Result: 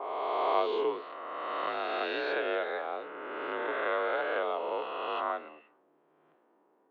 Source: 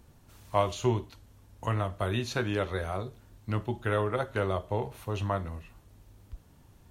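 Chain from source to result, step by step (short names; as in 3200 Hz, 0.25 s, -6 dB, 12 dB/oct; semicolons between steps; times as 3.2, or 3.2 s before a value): spectral swells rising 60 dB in 2.83 s; low-pass opened by the level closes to 900 Hz, open at -20.5 dBFS; mistuned SSB +54 Hz 280–3600 Hz; gain -4.5 dB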